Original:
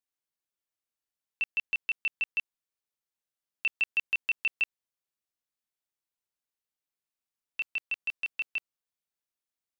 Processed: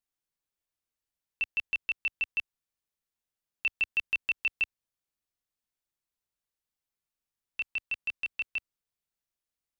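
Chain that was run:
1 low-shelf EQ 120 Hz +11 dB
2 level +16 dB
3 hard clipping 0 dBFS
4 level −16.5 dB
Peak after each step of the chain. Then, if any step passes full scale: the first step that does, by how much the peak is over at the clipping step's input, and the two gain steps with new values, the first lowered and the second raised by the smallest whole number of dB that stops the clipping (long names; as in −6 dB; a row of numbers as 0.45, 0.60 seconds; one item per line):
−20.5, −4.5, −4.5, −21.0 dBFS
no step passes full scale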